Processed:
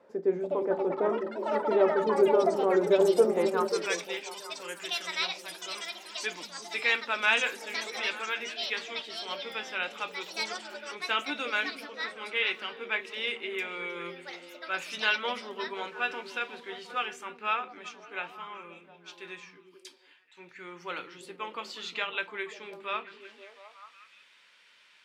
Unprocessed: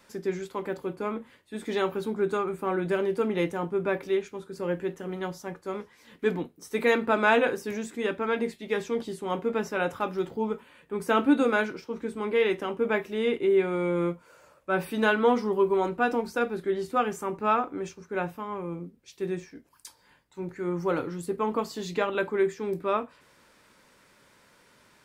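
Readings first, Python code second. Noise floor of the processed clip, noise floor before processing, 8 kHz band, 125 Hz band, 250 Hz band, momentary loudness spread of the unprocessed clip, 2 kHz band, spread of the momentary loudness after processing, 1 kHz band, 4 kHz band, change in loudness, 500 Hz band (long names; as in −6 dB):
−60 dBFS, −61 dBFS, +3.5 dB, −12.5 dB, −8.5 dB, 13 LU, +1.0 dB, 18 LU, −4.0 dB, +8.0 dB, −2.0 dB, −3.0 dB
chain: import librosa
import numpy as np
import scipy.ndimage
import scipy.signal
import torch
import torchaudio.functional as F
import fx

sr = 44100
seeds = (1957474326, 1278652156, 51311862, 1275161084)

y = fx.filter_sweep_bandpass(x, sr, from_hz=520.0, to_hz=2900.0, start_s=3.24, end_s=3.96, q=2.1)
y = fx.echo_pitch(y, sr, ms=338, semitones=7, count=3, db_per_echo=-6.0)
y = fx.echo_stepped(y, sr, ms=178, hz=160.0, octaves=0.7, feedback_pct=70, wet_db=-3.0)
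y = y * 10.0 ** (7.5 / 20.0)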